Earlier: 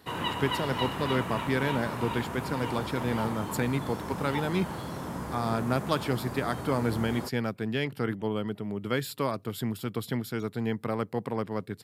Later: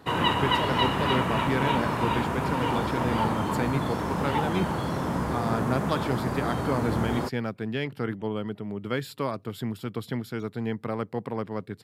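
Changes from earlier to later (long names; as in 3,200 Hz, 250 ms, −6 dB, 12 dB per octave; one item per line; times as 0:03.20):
background +8.0 dB
master: add high-shelf EQ 6,700 Hz −9 dB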